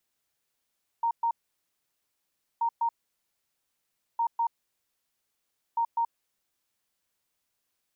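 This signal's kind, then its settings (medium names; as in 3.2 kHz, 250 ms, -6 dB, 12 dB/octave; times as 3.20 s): beep pattern sine 928 Hz, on 0.08 s, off 0.12 s, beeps 2, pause 1.30 s, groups 4, -23 dBFS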